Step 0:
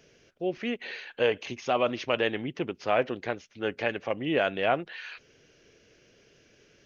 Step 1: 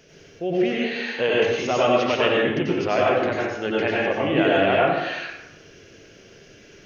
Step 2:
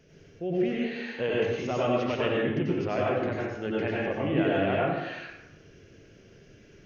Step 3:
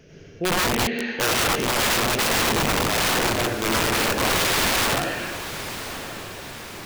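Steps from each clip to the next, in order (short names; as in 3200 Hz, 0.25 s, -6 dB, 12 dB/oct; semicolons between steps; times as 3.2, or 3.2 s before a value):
in parallel at -0.5 dB: compressor, threshold -36 dBFS, peak gain reduction 15.5 dB; on the sum: plate-style reverb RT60 0.96 s, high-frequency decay 0.65×, pre-delay 80 ms, DRR -5 dB
EQ curve 120 Hz 0 dB, 740 Hz -9 dB, 2000 Hz -9 dB, 3600 Hz -12 dB
rattling part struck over -36 dBFS, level -35 dBFS; wrapped overs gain 25 dB; diffused feedback echo 1.069 s, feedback 54%, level -12 dB; gain +8.5 dB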